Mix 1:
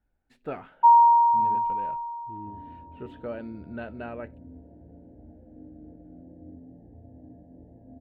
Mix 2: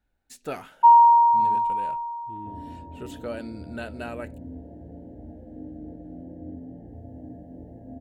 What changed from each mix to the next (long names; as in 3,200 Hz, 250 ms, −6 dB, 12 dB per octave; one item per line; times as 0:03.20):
second sound +6.5 dB
master: remove high-frequency loss of the air 500 metres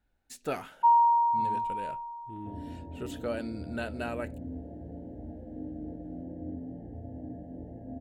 first sound −8.0 dB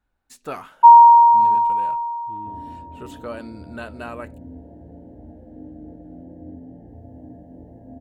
first sound +8.5 dB
master: add parametric band 1,100 Hz +11 dB 0.44 octaves